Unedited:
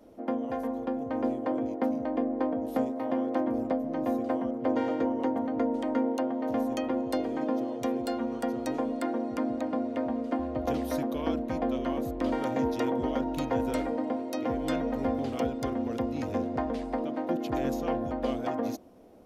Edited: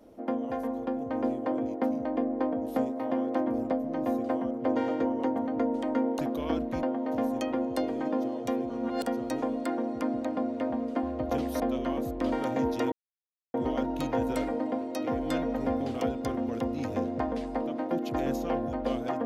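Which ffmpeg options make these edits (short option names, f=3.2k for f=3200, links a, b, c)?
-filter_complex "[0:a]asplit=7[a][b][c][d][e][f][g];[a]atrim=end=6.192[h];[b]atrim=start=10.958:end=11.602[i];[c]atrim=start=6.188:end=8.062[j];[d]atrim=start=8.058:end=8.392,asetpts=PTS-STARTPTS,areverse[k];[e]atrim=start=8.388:end=10.962[l];[f]atrim=start=11.598:end=12.92,asetpts=PTS-STARTPTS,afade=t=out:st=1.318:d=0.004:c=hsin,apad=pad_dur=0.62[m];[g]atrim=start=12.92,asetpts=PTS-STARTPTS,afade=t=in:d=0.004:c=hsin[n];[h][i]acrossfade=d=0.004:c1=hsin:c2=hsin[o];[o][j]acrossfade=d=0.004:c1=hsin:c2=hsin[p];[p][k]acrossfade=d=0.004:c1=hsin:c2=hsin[q];[q][l]acrossfade=d=0.004:c1=hsin:c2=hsin[r];[m][n]concat=n=2:v=0:a=1[s];[r][s]acrossfade=d=0.004:c1=hsin:c2=hsin"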